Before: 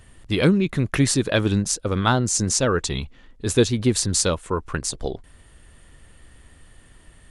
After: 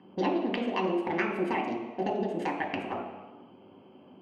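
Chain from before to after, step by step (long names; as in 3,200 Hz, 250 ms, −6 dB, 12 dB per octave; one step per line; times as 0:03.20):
adaptive Wiener filter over 41 samples
Chebyshev band-pass filter 150–1,700 Hz, order 3
downward compressor 5 to 1, threshold −34 dBFS, peak gain reduction 19 dB
convolution reverb RT60 2.2 s, pre-delay 3 ms, DRR 3 dB
wrong playback speed 45 rpm record played at 78 rpm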